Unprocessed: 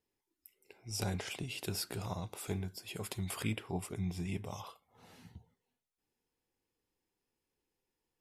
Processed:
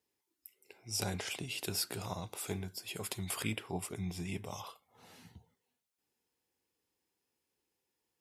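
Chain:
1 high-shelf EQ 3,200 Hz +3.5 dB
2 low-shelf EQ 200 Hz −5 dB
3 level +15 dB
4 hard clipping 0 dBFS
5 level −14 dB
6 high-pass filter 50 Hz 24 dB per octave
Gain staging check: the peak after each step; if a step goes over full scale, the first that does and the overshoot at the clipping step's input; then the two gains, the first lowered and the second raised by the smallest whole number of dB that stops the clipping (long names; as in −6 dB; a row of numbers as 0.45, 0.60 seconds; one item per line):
−20.0, −21.0, −6.0, −6.0, −20.0, −19.5 dBFS
no step passes full scale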